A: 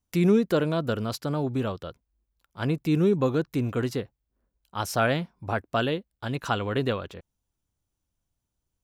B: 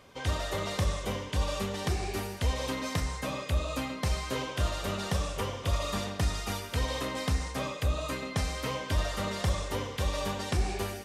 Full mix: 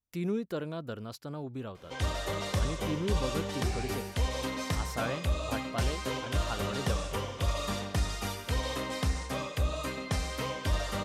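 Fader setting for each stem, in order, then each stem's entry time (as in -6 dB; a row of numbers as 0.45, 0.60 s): -11.5, -1.0 dB; 0.00, 1.75 s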